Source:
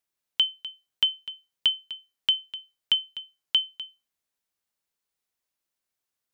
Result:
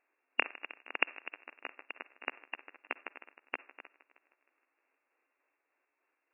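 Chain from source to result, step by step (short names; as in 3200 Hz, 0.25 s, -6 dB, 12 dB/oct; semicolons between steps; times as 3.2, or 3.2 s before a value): trilling pitch shifter +6 st, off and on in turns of 0.15 s; compressor, threshold -28 dBFS, peak gain reduction 10 dB; on a send at -19.5 dB: reverb RT60 0.40 s, pre-delay 46 ms; on the sum: echoes that change speed 90 ms, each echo +3 st, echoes 3, each echo -6 dB; brick-wall FIR band-pass 250–2800 Hz; multi-head echo 0.156 s, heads first and second, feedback 42%, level -21 dB; gain +13.5 dB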